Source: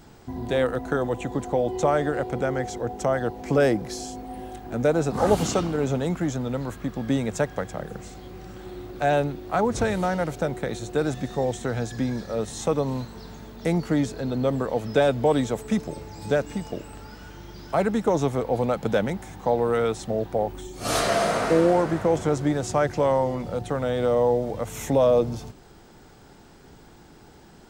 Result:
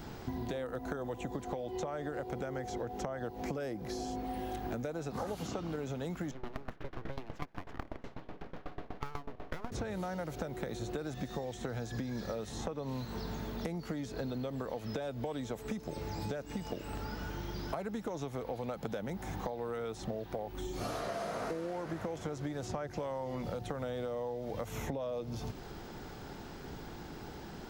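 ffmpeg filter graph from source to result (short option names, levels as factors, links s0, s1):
-filter_complex "[0:a]asettb=1/sr,asplit=3[s0][s1][s2];[s0]atrim=end=6.314[s3];[s1]atrim=start=6.31:end=9.72,asetpts=PTS-STARTPTS,afade=t=in:d=0.004:c=qsin,afade=t=out:st=3.406:d=0.004:c=qsin,lowpass=2300,aeval=exprs='abs(val(0))':c=same,aeval=exprs='val(0)*pow(10,-23*if(lt(mod(8.1*n/s,1),2*abs(8.1)/1000),1-mod(8.1*n/s,1)/(2*abs(8.1)/1000),(mod(8.1*n/s,1)-2*abs(8.1)/1000)/(1-2*abs(8.1)/1000))/20)':c=same[s4];[s2]atrim=start=9.716[s5];[s3][s4]acrossfade=d=0.004:c1=hsin:c2=qsin[s6];[s6][s5]acrossfade=d=0.004:c1=qsin:c2=hsin,acompressor=threshold=0.0251:ratio=6,equalizer=f=8400:w=2.1:g=-9,acrossover=split=1500|5300[s7][s8][s9];[s7]acompressor=threshold=0.01:ratio=4[s10];[s8]acompressor=threshold=0.00141:ratio=4[s11];[s9]acompressor=threshold=0.00112:ratio=4[s12];[s10][s11][s12]amix=inputs=3:normalize=0,volume=1.58"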